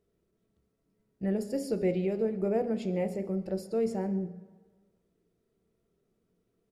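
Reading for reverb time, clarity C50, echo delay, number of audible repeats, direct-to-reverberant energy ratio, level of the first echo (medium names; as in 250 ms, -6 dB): 1.4 s, 13.0 dB, 136 ms, 1, 9.0 dB, -22.0 dB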